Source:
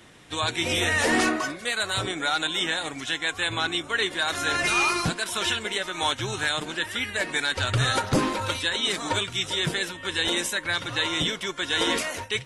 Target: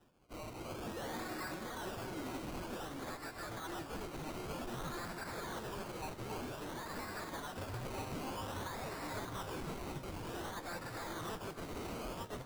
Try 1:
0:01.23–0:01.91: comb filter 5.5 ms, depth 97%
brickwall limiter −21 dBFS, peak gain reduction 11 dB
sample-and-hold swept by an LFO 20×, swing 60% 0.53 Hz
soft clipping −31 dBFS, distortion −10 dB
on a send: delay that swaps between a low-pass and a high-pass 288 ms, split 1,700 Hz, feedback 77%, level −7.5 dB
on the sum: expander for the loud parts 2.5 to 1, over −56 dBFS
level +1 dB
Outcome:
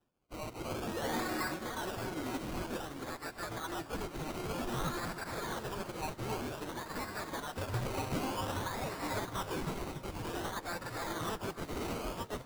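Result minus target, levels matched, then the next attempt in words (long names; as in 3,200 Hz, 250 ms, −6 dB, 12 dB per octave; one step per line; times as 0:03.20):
soft clipping: distortion −6 dB
0:01.23–0:01.91: comb filter 5.5 ms, depth 97%
brickwall limiter −21 dBFS, peak gain reduction 11 dB
sample-and-hold swept by an LFO 20×, swing 60% 0.53 Hz
soft clipping −41 dBFS, distortion −5 dB
on a send: delay that swaps between a low-pass and a high-pass 288 ms, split 1,700 Hz, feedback 77%, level −7.5 dB
on the sum: expander for the loud parts 2.5 to 1, over −56 dBFS
level +1 dB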